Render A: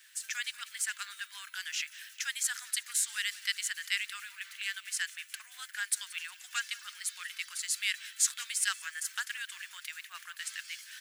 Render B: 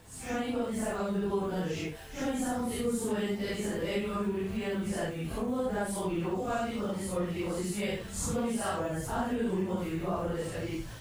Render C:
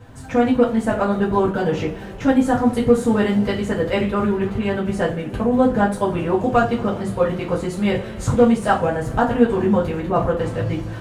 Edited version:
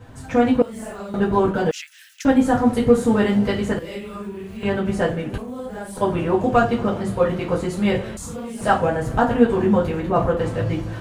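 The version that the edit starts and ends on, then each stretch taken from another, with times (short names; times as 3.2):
C
0.62–1.14 from B
1.71–2.25 from A
3.79–4.63 from B
5.38–5.97 from B
8.17–8.61 from B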